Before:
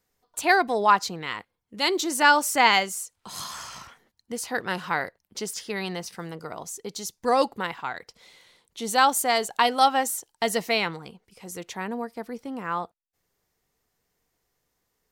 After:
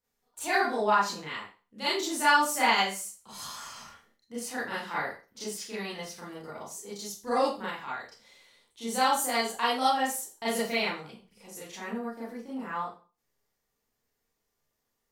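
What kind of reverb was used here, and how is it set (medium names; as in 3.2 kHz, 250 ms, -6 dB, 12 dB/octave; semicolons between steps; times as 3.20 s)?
Schroeder reverb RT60 0.34 s, combs from 27 ms, DRR -9 dB; trim -14 dB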